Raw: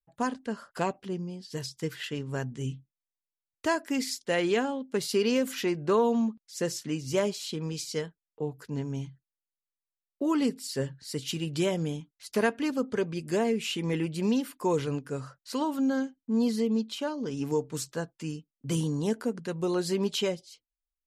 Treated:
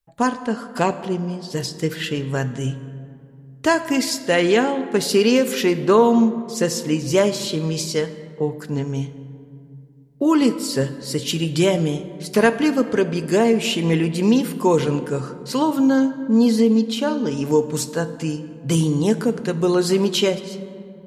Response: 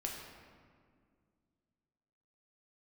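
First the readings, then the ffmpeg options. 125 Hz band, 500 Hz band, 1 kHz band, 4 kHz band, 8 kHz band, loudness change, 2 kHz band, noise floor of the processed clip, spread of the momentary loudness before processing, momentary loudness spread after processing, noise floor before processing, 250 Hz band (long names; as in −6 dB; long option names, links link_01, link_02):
+10.5 dB, +10.5 dB, +10.0 dB, +10.0 dB, +10.0 dB, +10.5 dB, +10.0 dB, −43 dBFS, 10 LU, 10 LU, below −85 dBFS, +10.5 dB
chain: -filter_complex "[0:a]asplit=2[link_01][link_02];[1:a]atrim=start_sample=2205,asetrate=33957,aresample=44100[link_03];[link_02][link_03]afir=irnorm=-1:irlink=0,volume=-8.5dB[link_04];[link_01][link_04]amix=inputs=2:normalize=0,volume=7.5dB"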